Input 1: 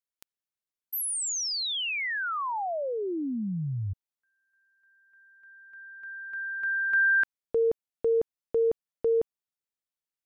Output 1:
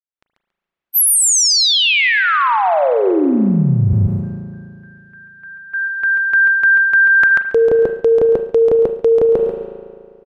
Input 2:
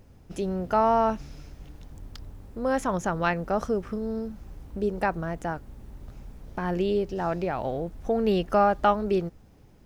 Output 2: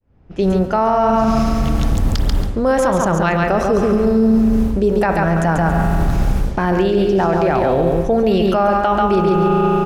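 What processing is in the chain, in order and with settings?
fade-in on the opening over 2.01 s; gate -50 dBFS, range -7 dB; feedback delay 139 ms, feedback 21%, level -5 dB; spring tank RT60 2.1 s, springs 36 ms, chirp 30 ms, DRR 10 dB; reverse; compression 10:1, threshold -37 dBFS; reverse; level-controlled noise filter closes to 2.4 kHz, open at -38.5 dBFS; loudness maximiser +34 dB; trim -6 dB

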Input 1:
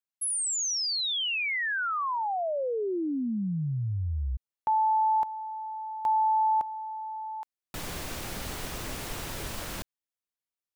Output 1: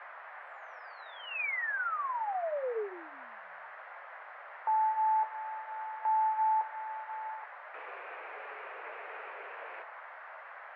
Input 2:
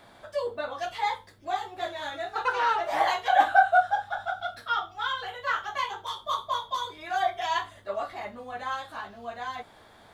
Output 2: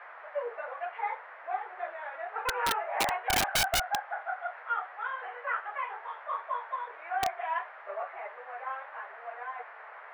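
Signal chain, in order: Chebyshev band-pass 430–2500 Hz, order 4; band noise 590–1900 Hz -44 dBFS; flange 0.25 Hz, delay 5.5 ms, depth 6.5 ms, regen -49%; integer overflow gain 20.5 dB

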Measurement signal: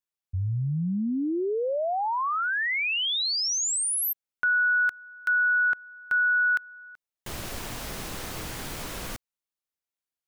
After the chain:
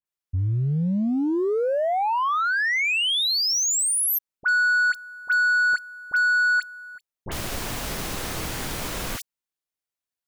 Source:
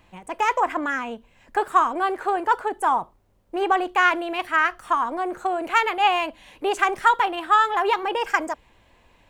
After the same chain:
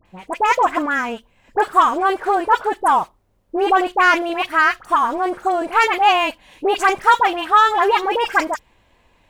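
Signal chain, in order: waveshaping leveller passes 1; phase dispersion highs, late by 57 ms, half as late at 1.6 kHz; trim +2 dB

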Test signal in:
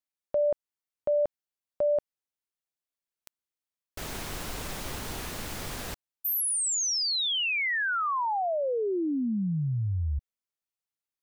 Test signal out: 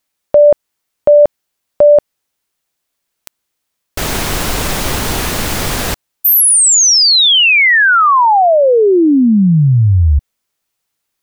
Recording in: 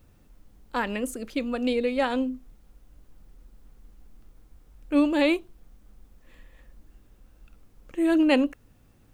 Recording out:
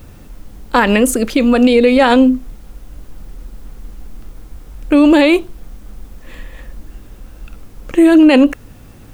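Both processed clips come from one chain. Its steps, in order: loudness maximiser +20.5 dB; trim -1 dB

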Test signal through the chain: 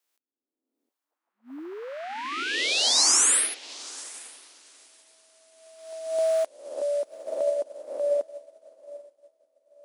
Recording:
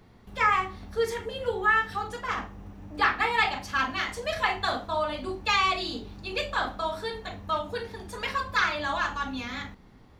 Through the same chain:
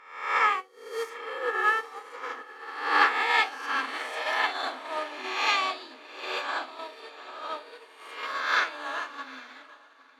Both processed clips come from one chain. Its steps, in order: reverse spectral sustain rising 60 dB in 1.70 s; brick-wall FIR high-pass 240 Hz; on a send: echo that smears into a reverb 849 ms, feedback 53%, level -8 dB; on the sum: upward expansion 2.5:1, over -40 dBFS

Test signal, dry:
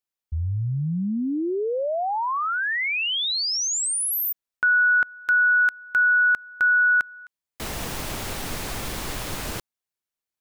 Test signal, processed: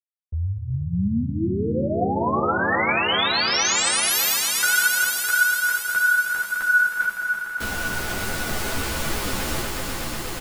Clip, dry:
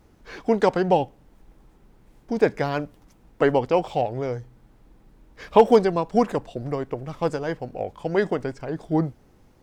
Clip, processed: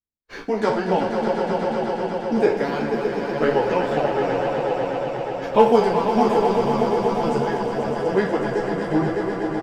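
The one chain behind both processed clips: spectral sustain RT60 0.41 s; speakerphone echo 250 ms, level -12 dB; in parallel at -2 dB: compression, threshold -33 dBFS; on the sum: gate -34 dBFS, range -48 dB; on a send: echo with a slow build-up 122 ms, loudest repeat 5, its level -8 dB; on the sum: three-phase chorus

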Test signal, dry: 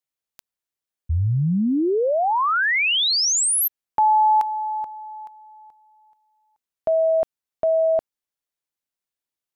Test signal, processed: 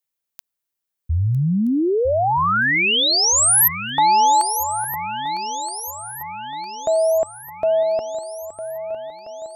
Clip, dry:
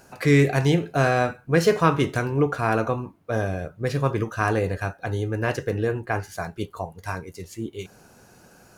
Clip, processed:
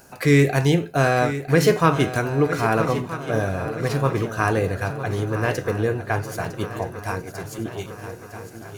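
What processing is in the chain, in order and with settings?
treble shelf 11 kHz +9 dB; on a send: shuffle delay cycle 1274 ms, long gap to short 3:1, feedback 52%, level -12 dB; on the sum: trim +1.5 dB

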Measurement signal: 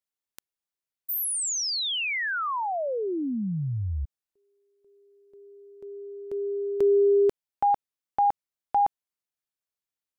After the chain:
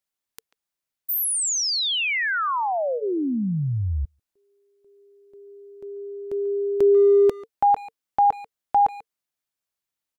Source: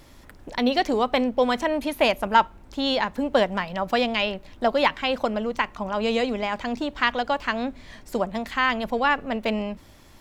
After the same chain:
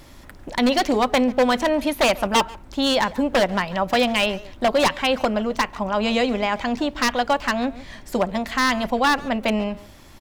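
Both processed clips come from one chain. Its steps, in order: band-stop 450 Hz, Q 12; wavefolder -15.5 dBFS; speakerphone echo 140 ms, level -16 dB; trim +4.5 dB

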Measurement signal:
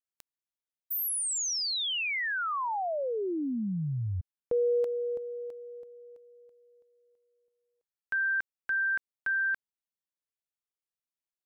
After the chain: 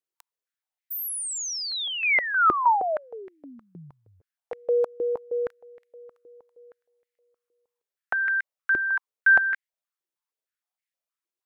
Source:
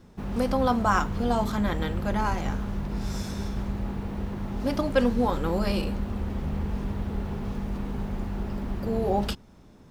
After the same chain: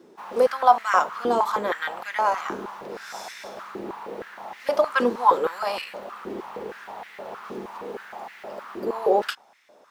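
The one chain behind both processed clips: dynamic bell 1.1 kHz, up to +5 dB, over -46 dBFS, Q 2.4; step-sequenced high-pass 6.4 Hz 360–2000 Hz

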